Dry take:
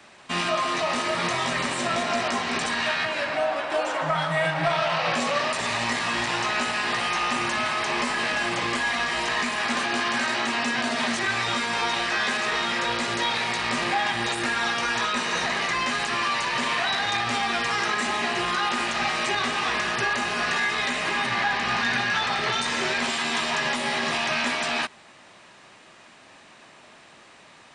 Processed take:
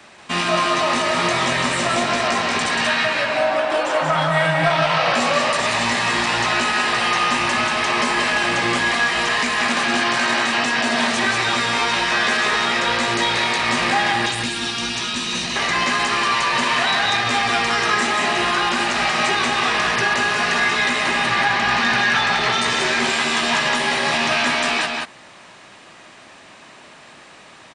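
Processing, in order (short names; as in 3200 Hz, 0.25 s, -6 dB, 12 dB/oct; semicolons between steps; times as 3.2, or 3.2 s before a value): 14.26–15.56 band shelf 940 Hz -11 dB 2.6 oct; echo 0.184 s -4 dB; gain +5 dB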